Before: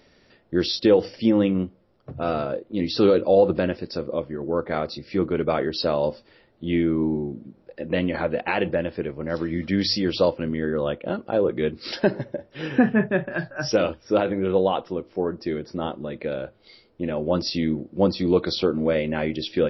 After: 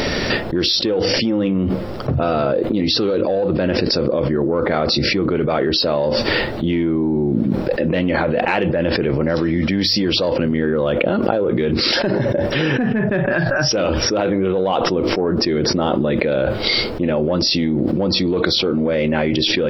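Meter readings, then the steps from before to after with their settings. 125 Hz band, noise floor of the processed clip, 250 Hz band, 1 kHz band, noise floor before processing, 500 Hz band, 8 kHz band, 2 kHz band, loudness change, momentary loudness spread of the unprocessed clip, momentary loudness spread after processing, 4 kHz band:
+8.5 dB, -23 dBFS, +5.5 dB, +6.0 dB, -59 dBFS, +4.5 dB, no reading, +9.0 dB, +6.0 dB, 11 LU, 2 LU, +12.0 dB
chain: in parallel at -6 dB: saturation -18 dBFS, distortion -11 dB; on the sum: level flattener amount 100%; trim -6.5 dB

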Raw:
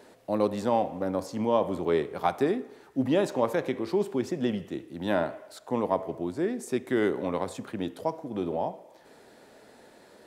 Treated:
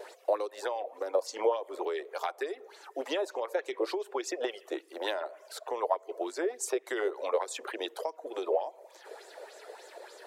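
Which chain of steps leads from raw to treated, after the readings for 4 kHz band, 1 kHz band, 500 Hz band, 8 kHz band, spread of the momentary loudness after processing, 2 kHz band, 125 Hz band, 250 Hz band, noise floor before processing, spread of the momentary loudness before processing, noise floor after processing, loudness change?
+2.0 dB, -4.0 dB, -3.5 dB, +5.5 dB, 16 LU, -1.5 dB, under -40 dB, -13.0 dB, -55 dBFS, 8 LU, -57 dBFS, -5.0 dB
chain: steep high-pass 370 Hz 48 dB/octave; reverb removal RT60 0.52 s; compression 12:1, threshold -35 dBFS, peak gain reduction 15.5 dB; wow and flutter 24 cents; sweeping bell 3.4 Hz 480–7600 Hz +11 dB; trim +4 dB

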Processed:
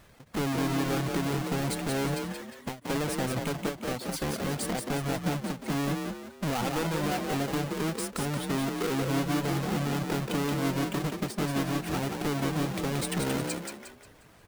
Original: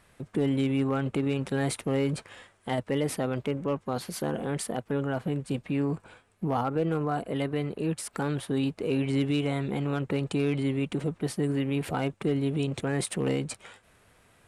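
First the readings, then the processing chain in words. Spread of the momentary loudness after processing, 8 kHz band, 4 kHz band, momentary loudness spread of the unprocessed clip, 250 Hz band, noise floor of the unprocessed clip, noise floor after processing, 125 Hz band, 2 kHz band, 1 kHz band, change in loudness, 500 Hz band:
5 LU, +3.5 dB, +3.5 dB, 5 LU, -1.5 dB, -62 dBFS, -54 dBFS, -1.5 dB, +3.0 dB, +2.0 dB, -1.0 dB, -2.5 dB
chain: square wave that keeps the level; reverb removal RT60 0.72 s; compression, threshold -27 dBFS, peak gain reduction 7 dB; wavefolder -25.5 dBFS; frequency-shifting echo 178 ms, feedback 38%, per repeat +36 Hz, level -4.5 dB; endings held to a fixed fall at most 190 dB/s

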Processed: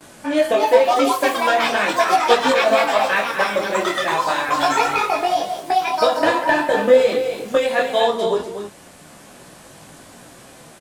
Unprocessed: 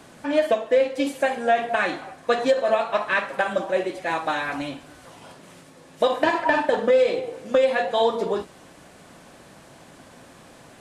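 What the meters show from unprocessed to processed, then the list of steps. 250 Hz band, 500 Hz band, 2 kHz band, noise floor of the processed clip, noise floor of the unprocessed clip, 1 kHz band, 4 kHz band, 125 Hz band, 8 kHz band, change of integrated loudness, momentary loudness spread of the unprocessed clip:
+4.5 dB, +4.0 dB, +6.0 dB, -44 dBFS, -49 dBFS, +8.5 dB, +9.5 dB, +4.0 dB, no reading, +5.0 dB, 8 LU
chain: gate with hold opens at -41 dBFS; treble shelf 6.9 kHz +10 dB; on a send: delay 245 ms -7.5 dB; on the sum: ever faster or slower copies 367 ms, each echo +6 st, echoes 2; detune thickener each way 14 cents; trim +6.5 dB

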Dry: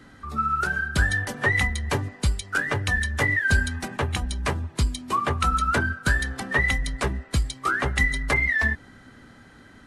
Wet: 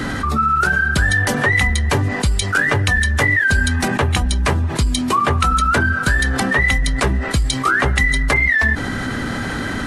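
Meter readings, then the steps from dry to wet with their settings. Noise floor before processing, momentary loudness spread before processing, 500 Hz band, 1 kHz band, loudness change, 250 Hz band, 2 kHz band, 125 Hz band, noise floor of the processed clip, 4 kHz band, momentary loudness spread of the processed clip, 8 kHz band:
-50 dBFS, 6 LU, +8.0 dB, +8.0 dB, +7.5 dB, +10.5 dB, +7.5 dB, +8.5 dB, -24 dBFS, +9.0 dB, 5 LU, +9.0 dB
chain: level flattener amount 70%; trim +2.5 dB

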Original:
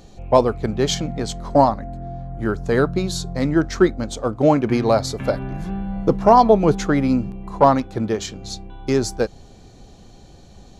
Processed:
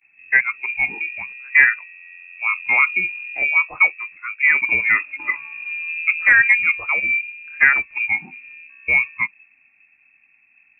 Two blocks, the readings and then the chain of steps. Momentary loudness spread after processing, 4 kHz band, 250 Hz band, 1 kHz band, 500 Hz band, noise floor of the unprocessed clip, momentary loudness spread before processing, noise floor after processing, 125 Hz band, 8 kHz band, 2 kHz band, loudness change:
13 LU, under -15 dB, under -25 dB, -12.0 dB, -25.0 dB, -45 dBFS, 12 LU, -58 dBFS, under -20 dB, under -40 dB, +19.0 dB, +2.5 dB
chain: in parallel at -7 dB: hard clipper -11 dBFS, distortion -12 dB; on the sum: gain riding within 5 dB 2 s; gate with hold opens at -34 dBFS; spectral noise reduction 14 dB; frequency inversion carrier 2.6 kHz; trim -3.5 dB

